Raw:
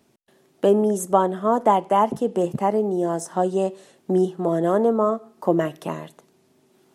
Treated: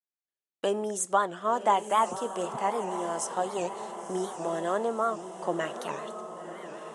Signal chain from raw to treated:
tilt shelving filter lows −9.5 dB, about 640 Hz
noise gate −46 dBFS, range −38 dB
downsampling to 22,050 Hz
on a send: feedback delay with all-pass diffusion 1,042 ms, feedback 54%, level −10 dB
on the sum: wow of a warped record 78 rpm, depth 160 cents
level −8 dB

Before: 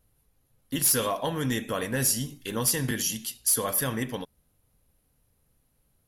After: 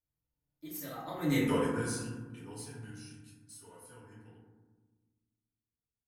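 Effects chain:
source passing by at 0:01.43, 47 m/s, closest 3.8 metres
feedback delay network reverb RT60 1.3 s, low-frequency decay 1.55×, high-frequency decay 0.3×, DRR −8 dB
level −6 dB

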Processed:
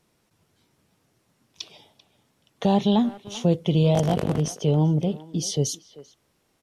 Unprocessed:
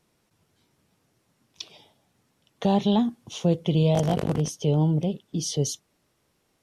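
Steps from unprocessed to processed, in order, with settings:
far-end echo of a speakerphone 390 ms, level −16 dB
level +1.5 dB

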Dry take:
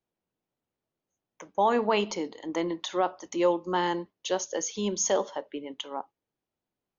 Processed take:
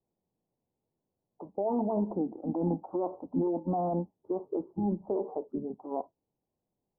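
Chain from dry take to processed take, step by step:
Butterworth low-pass 1,300 Hz 72 dB per octave
brickwall limiter −24.5 dBFS, peak gain reduction 11.5 dB
formants moved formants −4 semitones
level +3.5 dB

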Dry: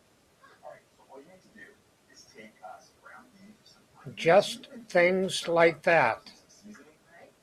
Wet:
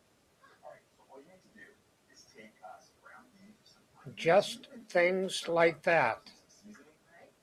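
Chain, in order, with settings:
0:04.82–0:05.49: Butterworth high-pass 180 Hz
level −4.5 dB

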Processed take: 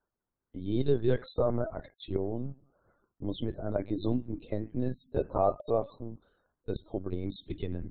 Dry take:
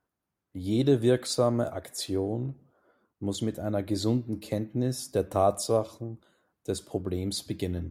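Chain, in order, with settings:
spectral peaks only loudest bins 64
linear-prediction vocoder at 8 kHz pitch kept
level −3 dB

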